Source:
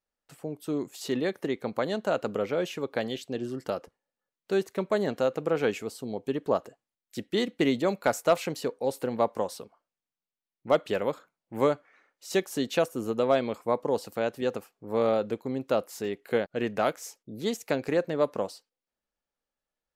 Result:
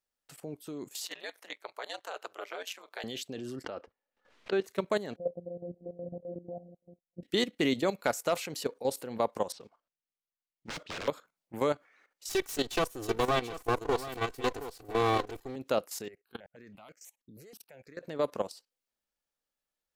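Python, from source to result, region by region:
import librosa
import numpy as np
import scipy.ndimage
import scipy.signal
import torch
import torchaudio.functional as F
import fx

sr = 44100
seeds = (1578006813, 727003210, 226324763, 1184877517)

y = fx.chain(x, sr, fx.highpass(hz=630.0, slope=24),
    fx.ring_mod(carrier_hz=91.0), at=(1.05, 3.04))
y = fx.chain(y, sr, fx.lowpass(hz=2800.0, slope=12),
    fx.peak_eq(hz=150.0, db=-15.0, octaves=0.39),
    fx.pre_swell(db_per_s=150.0), at=(3.64, 4.64))
y = fx.chain(y, sr, fx.reverse_delay(ms=611, wet_db=-7.0),
    fx.robotise(hz=174.0),
    fx.cheby_ripple(hz=790.0, ripple_db=9), at=(5.16, 7.23))
y = fx.chain(y, sr, fx.mod_noise(seeds[0], snr_db=20),
    fx.overflow_wrap(gain_db=27.5),
    fx.air_absorb(metres=150.0), at=(9.52, 11.08))
y = fx.chain(y, sr, fx.lower_of_two(delay_ms=2.6),
    fx.echo_single(ms=728, db=-9.5), at=(12.29, 15.56))
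y = fx.chain(y, sr, fx.level_steps(step_db=22),
    fx.phaser_held(hz=6.2, low_hz=950.0, high_hz=3600.0), at=(16.08, 18.03))
y = fx.high_shelf(y, sr, hz=2000.0, db=6.5)
y = fx.level_steps(y, sr, step_db=13)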